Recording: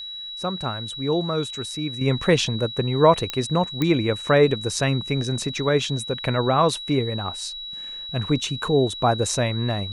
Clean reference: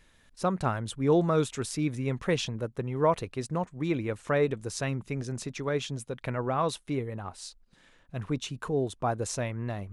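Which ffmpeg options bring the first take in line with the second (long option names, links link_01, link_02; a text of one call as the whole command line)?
ffmpeg -i in.wav -af "adeclick=threshold=4,bandreject=frequency=3900:width=30,asetnsamples=nb_out_samples=441:pad=0,asendcmd='2.01 volume volume -9dB',volume=0dB" out.wav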